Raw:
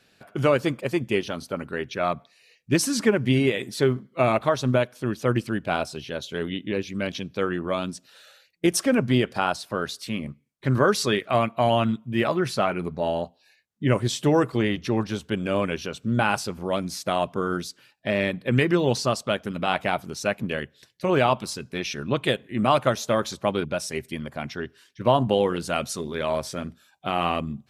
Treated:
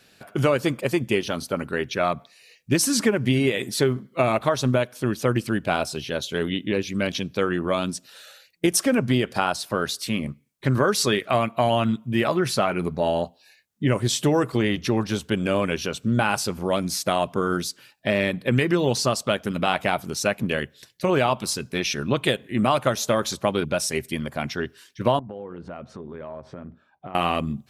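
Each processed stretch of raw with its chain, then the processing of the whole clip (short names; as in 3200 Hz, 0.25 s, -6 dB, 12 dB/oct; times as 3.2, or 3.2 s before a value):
25.19–27.15 LPF 1200 Hz + compressor 5:1, threshold -38 dBFS
whole clip: high shelf 6900 Hz +6.5 dB; compressor 2.5:1, threshold -22 dBFS; gain +4 dB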